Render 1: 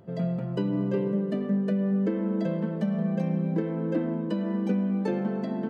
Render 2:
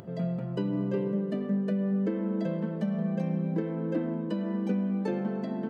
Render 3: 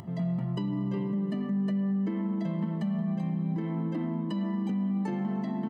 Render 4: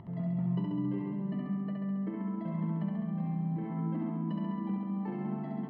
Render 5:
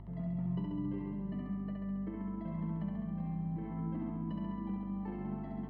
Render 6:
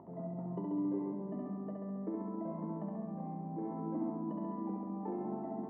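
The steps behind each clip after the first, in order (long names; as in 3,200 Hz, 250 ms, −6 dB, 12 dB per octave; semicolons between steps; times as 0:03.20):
upward compression, threshold −37 dBFS; level −2.5 dB
comb filter 1 ms, depth 77%; brickwall limiter −23.5 dBFS, peak gain reduction 6.5 dB
high-frequency loss of the air 460 metres; on a send: flutter between parallel walls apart 11.6 metres, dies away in 1.4 s; on the sum: level −4.5 dB
mains hum 50 Hz, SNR 12 dB; level −4.5 dB
flat-topped band-pass 520 Hz, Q 0.81; level +7.5 dB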